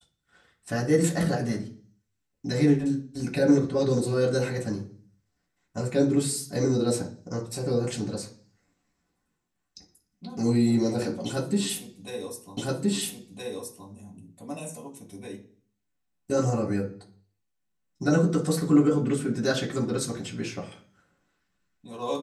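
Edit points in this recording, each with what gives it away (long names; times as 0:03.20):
0:12.57: the same again, the last 1.32 s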